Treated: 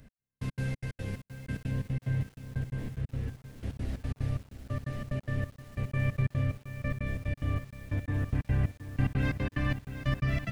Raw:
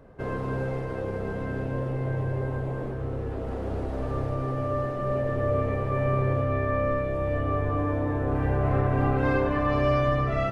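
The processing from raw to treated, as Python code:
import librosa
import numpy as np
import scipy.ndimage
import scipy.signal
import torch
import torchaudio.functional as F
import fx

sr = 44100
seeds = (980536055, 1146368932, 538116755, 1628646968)

y = fx.high_shelf(x, sr, hz=3400.0, db=fx.steps((0.0, 11.5), (1.7, 5.5)))
y = y + 10.0 ** (-18.0 / 20.0) * np.pad(y, (int(356 * sr / 1000.0), 0))[:len(y)]
y = fx.step_gate(y, sr, bpm=182, pattern='x....x.xx.x.x', floor_db=-60.0, edge_ms=4.5)
y = fx.band_shelf(y, sr, hz=660.0, db=-14.5, octaves=2.4)
y = fx.echo_crushed(y, sr, ms=719, feedback_pct=35, bits=8, wet_db=-11)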